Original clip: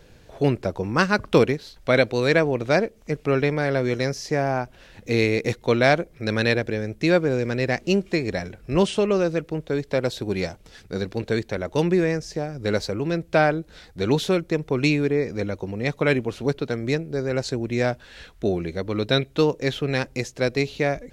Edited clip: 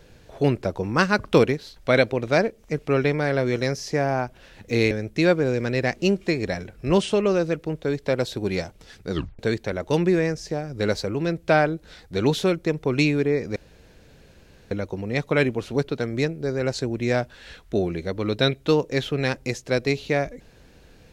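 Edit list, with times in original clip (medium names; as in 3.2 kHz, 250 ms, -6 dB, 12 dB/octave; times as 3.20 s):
2.13–2.51 s: delete
5.29–6.76 s: delete
10.97 s: tape stop 0.27 s
15.41 s: insert room tone 1.15 s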